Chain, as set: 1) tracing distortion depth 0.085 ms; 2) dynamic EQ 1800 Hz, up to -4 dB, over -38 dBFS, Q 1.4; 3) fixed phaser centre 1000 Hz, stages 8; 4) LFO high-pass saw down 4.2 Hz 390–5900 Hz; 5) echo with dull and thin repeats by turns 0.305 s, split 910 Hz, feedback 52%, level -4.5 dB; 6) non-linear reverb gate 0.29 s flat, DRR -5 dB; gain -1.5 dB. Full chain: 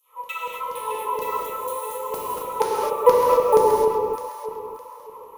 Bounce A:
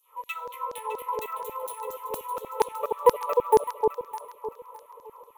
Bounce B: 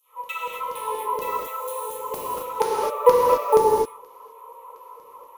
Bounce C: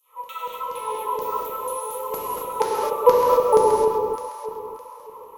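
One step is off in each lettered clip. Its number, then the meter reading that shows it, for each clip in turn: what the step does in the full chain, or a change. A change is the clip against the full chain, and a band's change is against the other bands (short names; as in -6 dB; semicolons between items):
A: 6, echo-to-direct 6.0 dB to -7.5 dB; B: 5, momentary loudness spread change -4 LU; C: 1, 2 kHz band -4.5 dB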